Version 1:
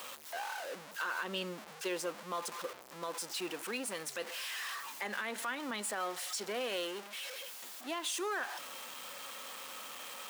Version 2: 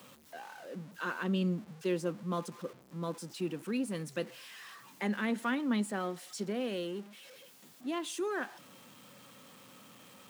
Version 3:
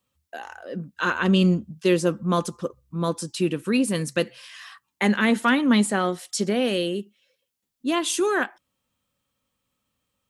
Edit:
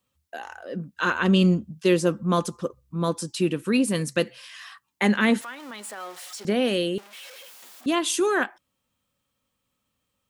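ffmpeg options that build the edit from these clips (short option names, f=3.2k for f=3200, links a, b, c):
-filter_complex "[0:a]asplit=2[a][b];[2:a]asplit=3[c][d][e];[c]atrim=end=5.412[f];[a]atrim=start=5.408:end=6.452[g];[d]atrim=start=6.448:end=6.982[h];[b]atrim=start=6.978:end=7.862[i];[e]atrim=start=7.858[j];[f][g]acrossfade=d=0.004:c1=hsin:c2=hsin[k];[k][h]acrossfade=d=0.004:c1=hsin:c2=hsin[l];[l][i]acrossfade=d=0.004:c1=hsin:c2=hsin[m];[m][j]acrossfade=d=0.004:c1=hsin:c2=hsin"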